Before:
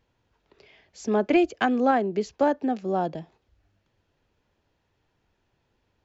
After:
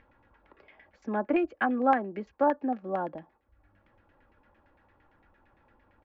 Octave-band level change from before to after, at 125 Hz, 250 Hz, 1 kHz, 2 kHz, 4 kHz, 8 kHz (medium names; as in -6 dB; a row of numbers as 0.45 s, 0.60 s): -8.5 dB, -5.5 dB, -2.0 dB, -3.0 dB, under -10 dB, no reading